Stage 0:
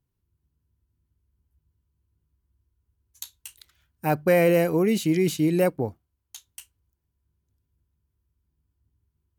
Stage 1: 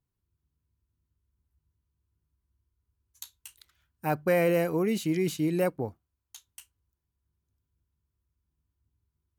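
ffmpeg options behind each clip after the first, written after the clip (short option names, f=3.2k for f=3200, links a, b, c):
-af "equalizer=f=1.2k:w=1.5:g=3.5,volume=-5.5dB"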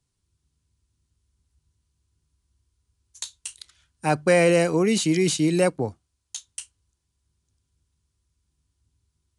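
-filter_complex "[0:a]acrossover=split=160|3300[a][b][c];[c]aeval=exprs='0.0562*sin(PI/2*2*val(0)/0.0562)':c=same[d];[a][b][d]amix=inputs=3:normalize=0,aresample=22050,aresample=44100,volume=6dB"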